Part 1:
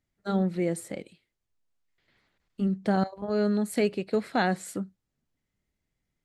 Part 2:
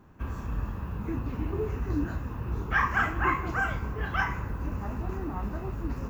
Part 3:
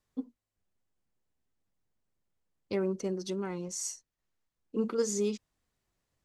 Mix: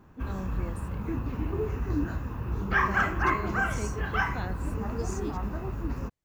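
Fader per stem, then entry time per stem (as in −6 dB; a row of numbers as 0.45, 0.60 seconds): −13.5, +0.5, −8.0 decibels; 0.00, 0.00, 0.00 seconds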